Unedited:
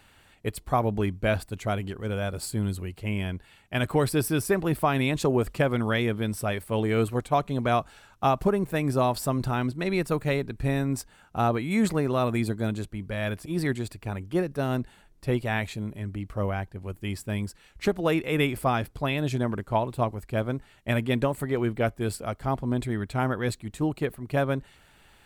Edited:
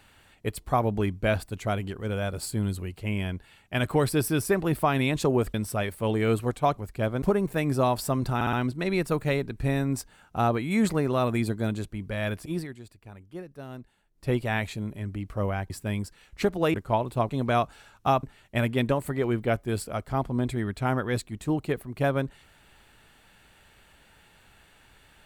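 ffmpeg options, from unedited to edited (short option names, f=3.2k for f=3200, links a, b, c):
-filter_complex "[0:a]asplit=13[a][b][c][d][e][f][g][h][i][j][k][l][m];[a]atrim=end=5.542[n];[b]atrim=start=6.228:end=7.462[o];[c]atrim=start=20.108:end=20.562[p];[d]atrim=start=8.398:end=9.592[q];[e]atrim=start=9.528:end=9.592[r];[f]atrim=start=9.528:end=9.592[s];[g]atrim=start=9.528:end=13.67,asetpts=PTS-STARTPTS,afade=t=out:st=3.992:d=0.15:silence=0.211349[t];[h]atrim=start=13.67:end=15.13,asetpts=PTS-STARTPTS,volume=-13.5dB[u];[i]atrim=start=15.13:end=16.702,asetpts=PTS-STARTPTS,afade=t=in:d=0.15:silence=0.211349[v];[j]atrim=start=17.128:end=18.172[w];[k]atrim=start=19.558:end=20.112[x];[l]atrim=start=7.458:end=8.402[y];[m]atrim=start=20.558[z];[n][o]acrossfade=d=0.004:c1=hsin:c2=hsin[aa];[aa][p]acrossfade=d=0.004:c1=hsin:c2=hsin[ab];[ab][q]acrossfade=d=0.004:c1=hsin:c2=hsin[ac];[ac][r]acrossfade=d=0.004:c1=hsin:c2=hsin[ad];[ad][s]acrossfade=d=0.004:c1=hsin:c2=hsin[ae];[t][u][v]concat=n=3:v=0:a=1[af];[ae][af]acrossfade=d=0.004:c1=hsin:c2=hsin[ag];[ag][w]acrossfade=d=0.004:c1=hsin:c2=hsin[ah];[ah][x]acrossfade=d=0.004:c1=hsin:c2=hsin[ai];[ai][y]acrossfade=d=0.004:c1=hsin:c2=hsin[aj];[aj][z]acrossfade=d=0.004:c1=hsin:c2=hsin"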